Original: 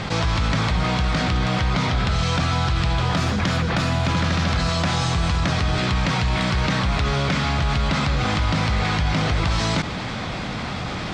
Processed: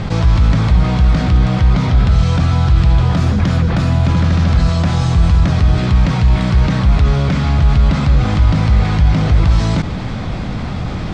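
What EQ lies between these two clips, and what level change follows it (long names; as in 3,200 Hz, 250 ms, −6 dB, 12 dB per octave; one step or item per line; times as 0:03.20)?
spectral tilt −3 dB per octave
high-shelf EQ 5,400 Hz +9.5 dB
0.0 dB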